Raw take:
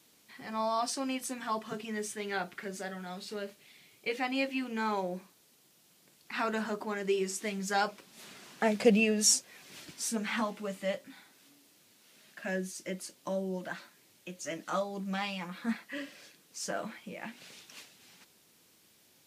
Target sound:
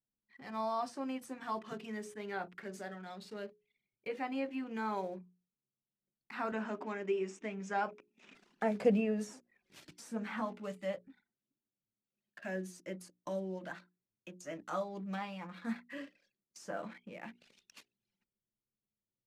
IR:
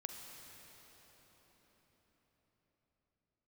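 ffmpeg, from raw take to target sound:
-filter_complex "[0:a]asettb=1/sr,asplit=3[link_01][link_02][link_03];[link_01]atrim=end=6.524[link_04];[link_02]atrim=start=6.52:end=8.35,asetpts=PTS-STARTPTS,afade=type=in:duration=0.004:curve=qsin,afade=type=out:start_time=1.826:duration=0.004:curve=qsin,highpass=190,equalizer=frequency=260:width_type=q:width=4:gain=7,equalizer=frequency=2500:width_type=q:width=4:gain=6,equalizer=frequency=4400:width_type=q:width=4:gain=-9,lowpass=frequency=7200:width=0.5412,lowpass=frequency=7200:width=1.3066[link_05];[link_03]atrim=start=8.346[link_06];[link_04][link_05]acrossfade=duration=0.004:curve1=hsin:curve2=qsin[link_07];[link_07][link_06]acrossfade=duration=0.004:curve1=qsin:curve2=hsin,anlmdn=0.01,acrossover=split=1800[link_08][link_09];[link_08]bandreject=frequency=60:width_type=h:width=6,bandreject=frequency=120:width_type=h:width=6,bandreject=frequency=180:width_type=h:width=6,bandreject=frequency=240:width_type=h:width=6,bandreject=frequency=300:width_type=h:width=6,bandreject=frequency=360:width_type=h:width=6,bandreject=frequency=420:width_type=h:width=6[link_10];[link_09]acompressor=threshold=-49dB:ratio=12[link_11];[link_10][link_11]amix=inputs=2:normalize=0,volume=-4dB"

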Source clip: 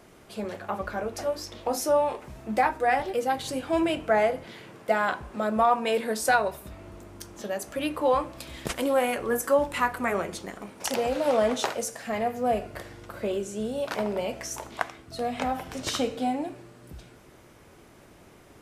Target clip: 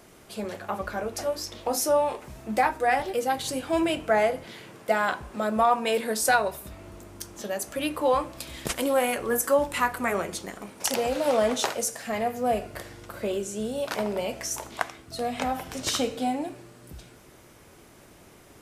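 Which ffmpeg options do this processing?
ffmpeg -i in.wav -af "highshelf=frequency=4400:gain=6.5" out.wav

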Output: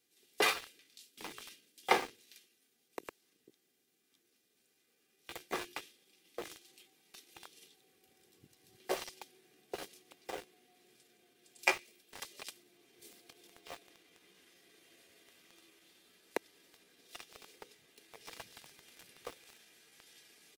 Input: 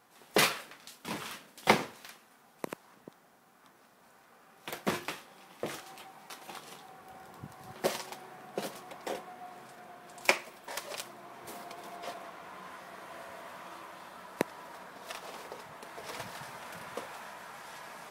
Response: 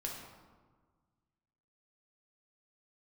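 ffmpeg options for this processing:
-filter_complex "[0:a]bass=frequency=250:gain=-14,treble=frequency=4000:gain=-3,aecho=1:1:2.5:0.4,atempo=0.88,acrossover=split=370|2500[link_01][link_02][link_03];[link_02]aeval=exprs='val(0)*gte(abs(val(0)),0.0133)':channel_layout=same[link_04];[link_01][link_04][link_03]amix=inputs=3:normalize=0,volume=-4.5dB"

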